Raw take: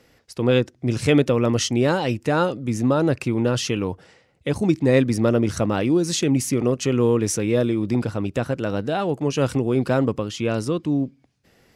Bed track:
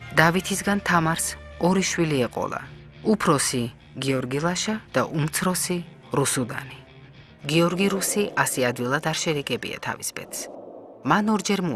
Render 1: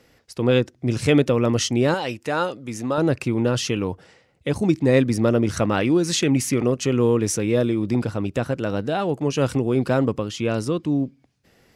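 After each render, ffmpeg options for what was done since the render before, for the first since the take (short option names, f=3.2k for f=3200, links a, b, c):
-filter_complex "[0:a]asettb=1/sr,asplit=3[a][b][c];[a]atrim=end=1.944[d];[b]atrim=start=1.94:end=2.98,asetpts=PTS-STARTPTS,afade=t=in:d=0.004:c=qsin,afade=t=out:st=1.036:d=0.004:c=qsin,lowshelf=f=340:g=-11[e];[c]atrim=start=2.976[f];[d][e]acrossfade=d=0.004:c1=hsin:c2=qsin[g];[g][f]acrossfade=d=0.004:c1=qsin:c2=hsin,asettb=1/sr,asplit=3[h][i][j];[h]atrim=end=5.534[k];[i]atrim=start=5.53:end=6.64,asetpts=PTS-STARTPTS,afade=t=in:d=0.004:c=qsin,afade=t=out:st=1.106:d=0.004:c=qsin,equalizer=f=1.9k:w=0.7:g=5[l];[j]atrim=start=6.636[m];[k][l]acrossfade=d=0.004:c1=hsin:c2=qsin[n];[n][m]acrossfade=d=0.004:c1=qsin:c2=hsin"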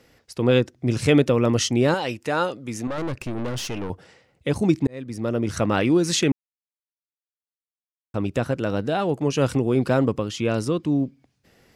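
-filter_complex "[0:a]asettb=1/sr,asplit=3[a][b][c];[a]atrim=end=2.874[d];[b]atrim=start=2.87:end=3.9,asetpts=PTS-STARTPTS,afade=t=in:d=0.004:c=qsin,afade=t=out:st=1.026:d=0.004:c=qsin,aeval=exprs='(tanh(17.8*val(0)+0.6)-tanh(0.6))/17.8':c=same[e];[c]atrim=start=3.896[f];[d][e]acrossfade=d=0.004:c1=hsin:c2=qsin[g];[g][f]acrossfade=d=0.004:c1=qsin:c2=hsin,asplit=4[h][i][j][k];[h]atrim=end=4.87,asetpts=PTS-STARTPTS,afade=t=out:st=4.866:d=0.004:c=hsin[l];[i]atrim=start=4.87:end=6.32,asetpts=PTS-STARTPTS,afade=t=in:d=0.88,afade=t=out:st=1.446:d=0.004:c=hsin[m];[j]atrim=start=6.32:end=8.14,asetpts=PTS-STARTPTS,volume=0[n];[k]atrim=start=8.14,asetpts=PTS-STARTPTS,afade=t=in:d=0.004:c=hsin[o];[l][m][n][o]concat=n=4:v=0:a=1"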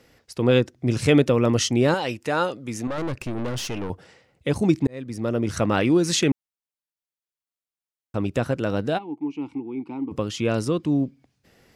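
-filter_complex "[0:a]asplit=3[a][b][c];[a]afade=t=out:st=8.97:d=0.02[d];[b]asplit=3[e][f][g];[e]bandpass=f=300:t=q:w=8,volume=0dB[h];[f]bandpass=f=870:t=q:w=8,volume=-6dB[i];[g]bandpass=f=2.24k:t=q:w=8,volume=-9dB[j];[h][i][j]amix=inputs=3:normalize=0,afade=t=in:st=8.97:d=0.02,afade=t=out:st=10.11:d=0.02[k];[c]afade=t=in:st=10.11:d=0.02[l];[d][k][l]amix=inputs=3:normalize=0"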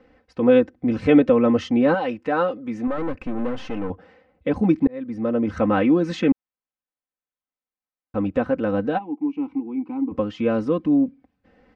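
-af "lowpass=1.8k,aecho=1:1:3.9:0.81"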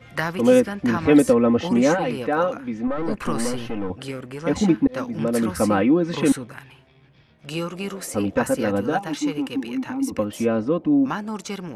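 -filter_complex "[1:a]volume=-8dB[a];[0:a][a]amix=inputs=2:normalize=0"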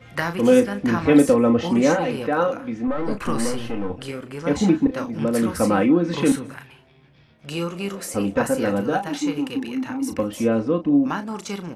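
-filter_complex "[0:a]asplit=2[a][b];[b]adelay=35,volume=-9.5dB[c];[a][c]amix=inputs=2:normalize=0,asplit=2[d][e];[e]adelay=186.6,volume=-23dB,highshelf=f=4k:g=-4.2[f];[d][f]amix=inputs=2:normalize=0"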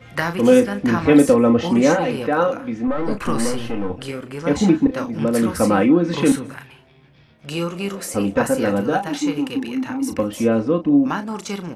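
-af "volume=2.5dB,alimiter=limit=-3dB:level=0:latency=1"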